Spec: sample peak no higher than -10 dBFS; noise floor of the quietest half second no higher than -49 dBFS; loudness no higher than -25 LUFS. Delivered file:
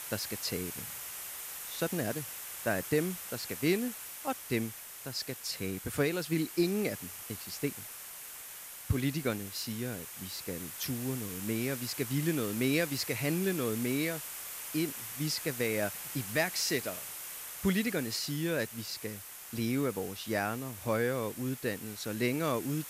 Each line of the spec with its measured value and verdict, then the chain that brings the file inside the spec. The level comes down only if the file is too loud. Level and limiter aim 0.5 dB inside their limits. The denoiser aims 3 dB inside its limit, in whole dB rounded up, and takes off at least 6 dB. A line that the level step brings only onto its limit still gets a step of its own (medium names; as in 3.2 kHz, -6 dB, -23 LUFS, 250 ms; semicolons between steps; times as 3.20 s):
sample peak -17.5 dBFS: pass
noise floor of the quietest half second -46 dBFS: fail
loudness -34.0 LUFS: pass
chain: noise reduction 6 dB, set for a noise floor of -46 dBFS